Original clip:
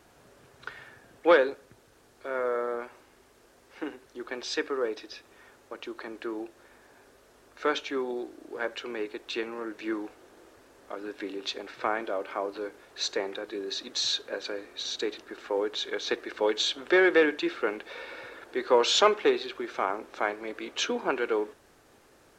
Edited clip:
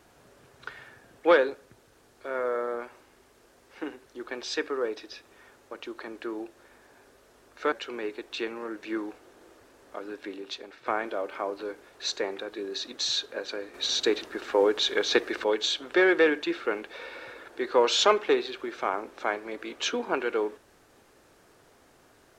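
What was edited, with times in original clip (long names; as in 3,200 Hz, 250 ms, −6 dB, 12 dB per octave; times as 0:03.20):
0:07.72–0:08.68: remove
0:10.95–0:11.82: fade out, to −8 dB
0:14.70–0:16.40: clip gain +6.5 dB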